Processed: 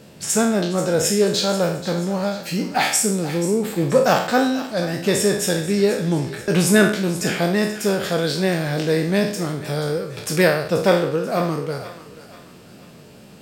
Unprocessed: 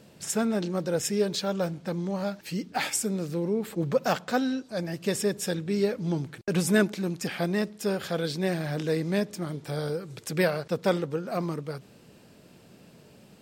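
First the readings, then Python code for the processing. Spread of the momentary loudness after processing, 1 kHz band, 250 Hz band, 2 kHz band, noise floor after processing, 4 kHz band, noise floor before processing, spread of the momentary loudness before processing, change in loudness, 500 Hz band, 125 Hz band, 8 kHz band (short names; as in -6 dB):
7 LU, +10.0 dB, +7.5 dB, +10.0 dB, -44 dBFS, +10.5 dB, -54 dBFS, 6 LU, +9.0 dB, +9.0 dB, +7.5 dB, +10.5 dB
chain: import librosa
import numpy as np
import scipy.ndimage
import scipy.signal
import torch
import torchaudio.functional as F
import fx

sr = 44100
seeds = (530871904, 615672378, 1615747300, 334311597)

y = fx.spec_trails(x, sr, decay_s=0.56)
y = fx.echo_thinned(y, sr, ms=484, feedback_pct=48, hz=720.0, wet_db=-13)
y = y * 10.0 ** (7.0 / 20.0)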